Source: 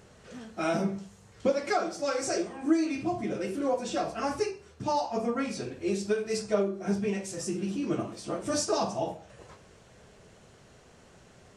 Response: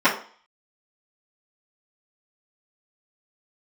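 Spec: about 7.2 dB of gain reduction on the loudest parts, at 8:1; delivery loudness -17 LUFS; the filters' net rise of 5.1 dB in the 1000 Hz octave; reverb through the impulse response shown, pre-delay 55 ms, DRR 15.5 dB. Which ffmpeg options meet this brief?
-filter_complex "[0:a]equalizer=f=1k:t=o:g=7,acompressor=threshold=-26dB:ratio=8,asplit=2[a][b];[1:a]atrim=start_sample=2205,adelay=55[c];[b][c]afir=irnorm=-1:irlink=0,volume=-36.5dB[d];[a][d]amix=inputs=2:normalize=0,volume=15.5dB"

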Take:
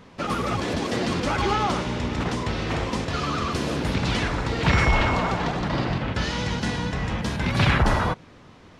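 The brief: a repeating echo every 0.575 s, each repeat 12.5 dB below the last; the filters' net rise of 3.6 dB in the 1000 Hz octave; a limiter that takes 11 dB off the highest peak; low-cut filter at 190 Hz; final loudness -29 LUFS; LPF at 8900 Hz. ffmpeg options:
-af "highpass=190,lowpass=8.9k,equalizer=f=1k:t=o:g=4.5,alimiter=limit=-19dB:level=0:latency=1,aecho=1:1:575|1150|1725:0.237|0.0569|0.0137,volume=-1.5dB"

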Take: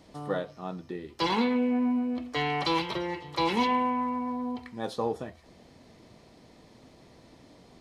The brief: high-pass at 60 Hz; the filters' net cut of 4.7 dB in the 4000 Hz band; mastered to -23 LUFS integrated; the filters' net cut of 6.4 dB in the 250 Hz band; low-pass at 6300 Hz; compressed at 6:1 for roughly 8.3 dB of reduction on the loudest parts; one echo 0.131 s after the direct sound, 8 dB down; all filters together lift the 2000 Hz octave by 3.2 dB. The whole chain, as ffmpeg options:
-af "highpass=60,lowpass=6.3k,equalizer=f=250:t=o:g=-7,equalizer=f=2k:t=o:g=6,equalizer=f=4k:t=o:g=-8,acompressor=threshold=-32dB:ratio=6,aecho=1:1:131:0.398,volume=13.5dB"

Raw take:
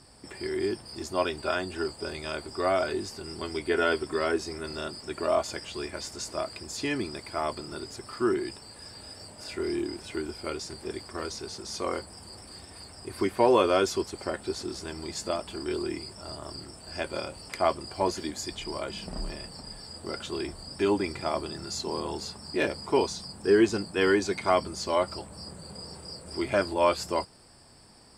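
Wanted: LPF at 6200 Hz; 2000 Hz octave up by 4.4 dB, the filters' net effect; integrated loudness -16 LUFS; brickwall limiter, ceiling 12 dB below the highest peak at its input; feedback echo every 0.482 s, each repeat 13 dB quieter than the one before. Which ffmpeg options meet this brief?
-af "lowpass=6.2k,equalizer=f=2k:t=o:g=6,alimiter=limit=-19.5dB:level=0:latency=1,aecho=1:1:482|964|1446:0.224|0.0493|0.0108,volume=17.5dB"

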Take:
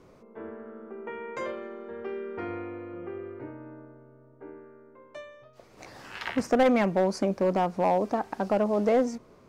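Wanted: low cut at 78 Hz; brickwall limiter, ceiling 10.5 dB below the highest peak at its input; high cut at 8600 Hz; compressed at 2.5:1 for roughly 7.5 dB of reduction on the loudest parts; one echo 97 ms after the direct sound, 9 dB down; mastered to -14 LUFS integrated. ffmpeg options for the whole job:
-af "highpass=78,lowpass=8.6k,acompressor=threshold=-30dB:ratio=2.5,alimiter=level_in=4.5dB:limit=-24dB:level=0:latency=1,volume=-4.5dB,aecho=1:1:97:0.355,volume=24.5dB"

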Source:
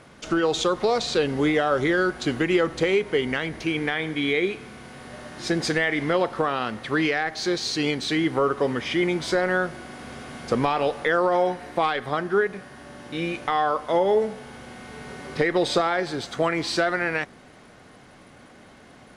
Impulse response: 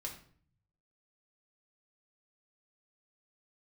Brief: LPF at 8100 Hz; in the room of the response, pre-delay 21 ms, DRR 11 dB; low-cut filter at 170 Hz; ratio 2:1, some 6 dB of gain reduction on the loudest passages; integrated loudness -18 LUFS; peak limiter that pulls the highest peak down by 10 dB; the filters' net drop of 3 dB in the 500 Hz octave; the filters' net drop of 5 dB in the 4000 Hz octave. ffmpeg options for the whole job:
-filter_complex "[0:a]highpass=170,lowpass=8.1k,equalizer=f=500:t=o:g=-3.5,equalizer=f=4k:t=o:g=-6,acompressor=threshold=-30dB:ratio=2,alimiter=level_in=1dB:limit=-24dB:level=0:latency=1,volume=-1dB,asplit=2[a][b];[1:a]atrim=start_sample=2205,adelay=21[c];[b][c]afir=irnorm=-1:irlink=0,volume=-9.5dB[d];[a][d]amix=inputs=2:normalize=0,volume=17dB"

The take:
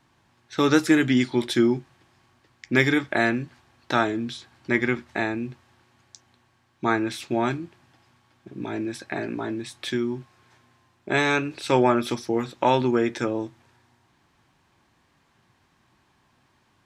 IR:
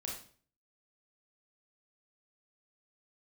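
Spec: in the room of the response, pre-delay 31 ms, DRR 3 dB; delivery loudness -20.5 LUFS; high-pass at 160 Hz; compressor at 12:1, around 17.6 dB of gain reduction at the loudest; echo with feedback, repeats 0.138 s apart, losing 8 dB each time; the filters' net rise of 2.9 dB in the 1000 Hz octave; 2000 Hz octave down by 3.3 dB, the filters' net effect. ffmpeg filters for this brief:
-filter_complex "[0:a]highpass=160,equalizer=f=1k:t=o:g=5,equalizer=f=2k:t=o:g=-6,acompressor=threshold=-31dB:ratio=12,aecho=1:1:138|276|414|552|690:0.398|0.159|0.0637|0.0255|0.0102,asplit=2[a][b];[1:a]atrim=start_sample=2205,adelay=31[c];[b][c]afir=irnorm=-1:irlink=0,volume=-2.5dB[d];[a][d]amix=inputs=2:normalize=0,volume=14dB"

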